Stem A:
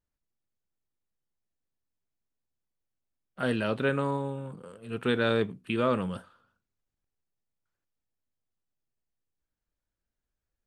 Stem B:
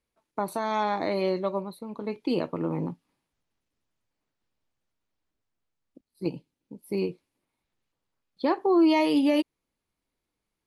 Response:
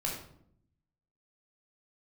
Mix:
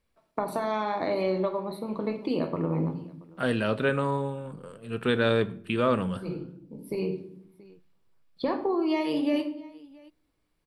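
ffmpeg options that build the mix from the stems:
-filter_complex "[0:a]volume=1.12,asplit=3[s0][s1][s2];[s1]volume=0.133[s3];[1:a]acompressor=threshold=0.0282:ratio=4,highshelf=f=6100:g=-5.5,volume=1.26,asplit=3[s4][s5][s6];[s5]volume=0.531[s7];[s6]volume=0.0944[s8];[s2]apad=whole_len=470321[s9];[s4][s9]sidechaincompress=threshold=0.01:ratio=8:attack=16:release=822[s10];[2:a]atrim=start_sample=2205[s11];[s3][s7]amix=inputs=2:normalize=0[s12];[s12][s11]afir=irnorm=-1:irlink=0[s13];[s8]aecho=0:1:679:1[s14];[s0][s10][s13][s14]amix=inputs=4:normalize=0,bandreject=f=6500:w=8.7"

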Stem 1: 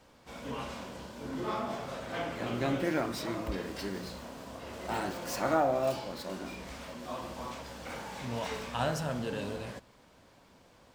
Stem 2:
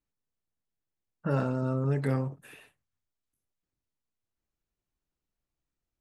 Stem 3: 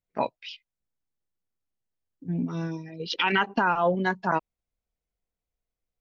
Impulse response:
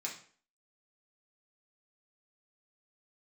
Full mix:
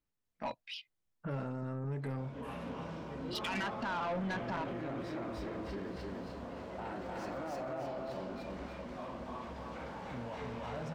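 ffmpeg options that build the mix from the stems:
-filter_complex "[0:a]lowpass=f=1600:p=1,alimiter=level_in=1.78:limit=0.0631:level=0:latency=1:release=13,volume=0.562,adelay=1900,volume=1.06,asplit=2[s0][s1];[s1]volume=0.501[s2];[1:a]acontrast=74,volume=0.473,asplit=2[s3][s4];[2:a]alimiter=limit=0.119:level=0:latency=1:release=15,equalizer=f=410:w=3.5:g=-13,adelay=250,volume=0.668[s5];[s4]apad=whole_len=275690[s6];[s5][s6]sidechaincompress=threshold=0.00316:ratio=8:attack=16:release=732[s7];[s0][s3]amix=inputs=2:normalize=0,highshelf=f=5800:g=-7.5,acompressor=threshold=0.00501:ratio=1.5,volume=1[s8];[s2]aecho=0:1:303|606|909|1212|1515:1|0.39|0.152|0.0593|0.0231[s9];[s7][s8][s9]amix=inputs=3:normalize=0,asoftclip=type=tanh:threshold=0.0266"

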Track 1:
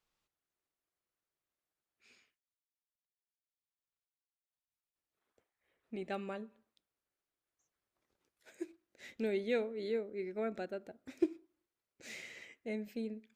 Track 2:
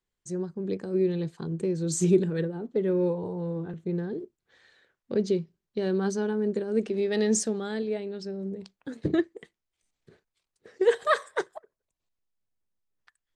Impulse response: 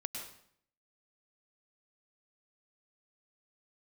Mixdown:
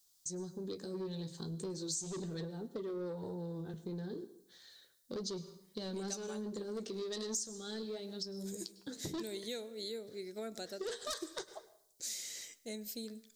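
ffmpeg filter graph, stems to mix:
-filter_complex "[0:a]volume=0.631,asplit=2[s0][s1];[s1]volume=0.119[s2];[1:a]lowpass=4500,flanger=delay=8:depth=9.7:regen=-45:speed=0.35:shape=triangular,asoftclip=type=tanh:threshold=0.0447,volume=0.631,asplit=2[s3][s4];[s4]volume=0.266[s5];[2:a]atrim=start_sample=2205[s6];[s2][s5]amix=inputs=2:normalize=0[s7];[s7][s6]afir=irnorm=-1:irlink=0[s8];[s0][s3][s8]amix=inputs=3:normalize=0,aexciter=amount=12.1:drive=5.5:freq=3800,acompressor=threshold=0.0112:ratio=4"

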